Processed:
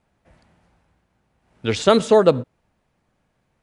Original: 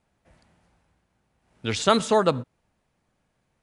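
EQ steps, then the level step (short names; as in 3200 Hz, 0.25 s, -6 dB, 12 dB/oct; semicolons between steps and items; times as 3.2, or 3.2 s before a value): dynamic EQ 1000 Hz, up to -5 dB, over -33 dBFS, Q 1; high shelf 4700 Hz -6 dB; dynamic EQ 490 Hz, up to +6 dB, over -35 dBFS, Q 1.1; +4.0 dB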